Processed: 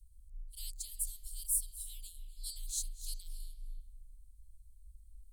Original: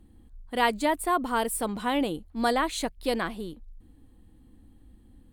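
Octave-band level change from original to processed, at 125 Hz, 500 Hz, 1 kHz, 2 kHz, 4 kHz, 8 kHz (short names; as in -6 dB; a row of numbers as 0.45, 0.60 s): n/a, under -40 dB, under -40 dB, under -40 dB, -13.5 dB, +1.0 dB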